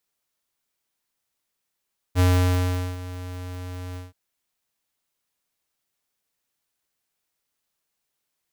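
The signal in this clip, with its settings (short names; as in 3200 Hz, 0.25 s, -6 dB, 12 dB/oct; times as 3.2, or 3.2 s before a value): ADSR square 90.5 Hz, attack 46 ms, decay 0.77 s, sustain -17.5 dB, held 1.81 s, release 0.167 s -16.5 dBFS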